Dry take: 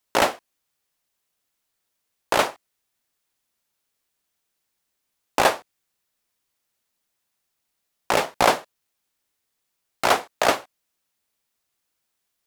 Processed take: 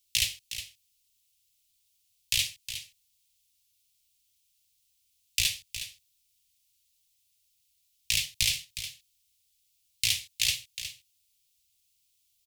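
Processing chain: inverse Chebyshev band-stop 210–1500 Hz, stop band 40 dB; compressor, threshold -28 dBFS, peak gain reduction 6.5 dB; echo 0.363 s -11 dB; gain +6 dB

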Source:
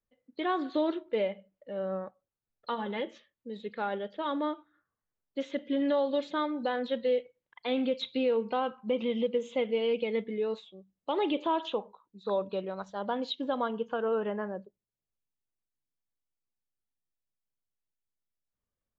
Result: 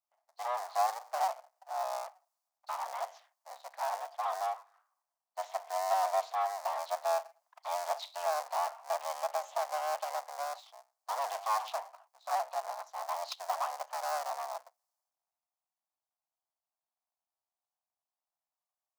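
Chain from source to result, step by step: cycle switcher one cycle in 3, inverted; band shelf 2300 Hz -13 dB; power-law curve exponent 0.7; elliptic high-pass 690 Hz, stop band 50 dB; high shelf 3600 Hz -7.5 dB; three-band expander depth 40%

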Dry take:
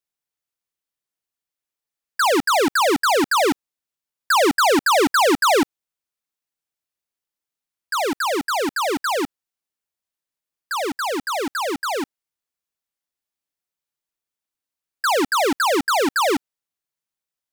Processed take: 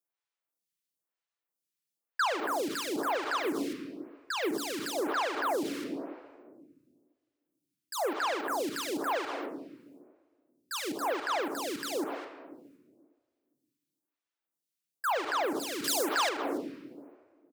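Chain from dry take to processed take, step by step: HPF 150 Hz 12 dB/oct; transient shaper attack -7 dB, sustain +9 dB; 3.37–4.54 band shelf 870 Hz -10 dB; echo 0.208 s -17.5 dB; shoebox room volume 1600 m³, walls mixed, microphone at 0.74 m; limiter -22 dBFS, peak gain reduction 16 dB; 15.84–16.29 high shelf 2800 Hz +12 dB; photocell phaser 1 Hz

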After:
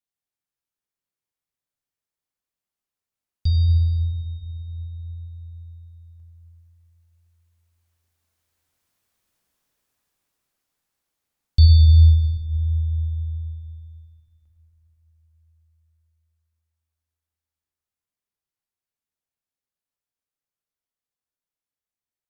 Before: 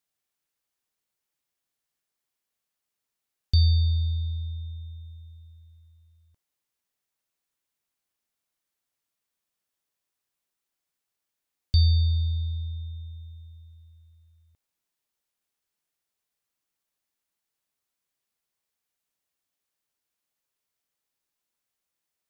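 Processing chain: Doppler pass-by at 9.13, 8 m/s, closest 9 m; low shelf 200 Hz +5.5 dB; plate-style reverb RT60 4 s, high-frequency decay 0.3×, DRR 0 dB; gain +8 dB

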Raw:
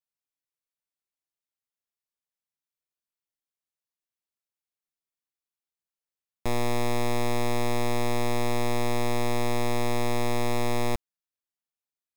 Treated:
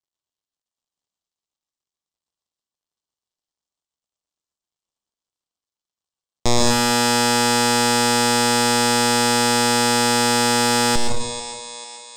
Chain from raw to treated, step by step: median filter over 15 samples; steep low-pass 8900 Hz 96 dB/oct; band shelf 1900 Hz -9 dB 1.1 oct; on a send: thinning echo 0.444 s, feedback 55%, high-pass 650 Hz, level -13 dB; on the sum: plate-style reverb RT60 0.72 s, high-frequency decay 0.8×, pre-delay 0.105 s, DRR -0.5 dB; sine folder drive 6 dB, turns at -14 dBFS; high shelf 2400 Hz +10.5 dB; gain +1 dB

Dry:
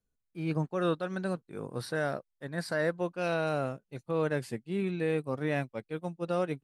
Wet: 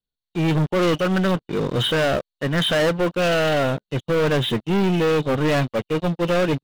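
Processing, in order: nonlinear frequency compression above 2700 Hz 4:1; sample leveller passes 5; gain +2 dB

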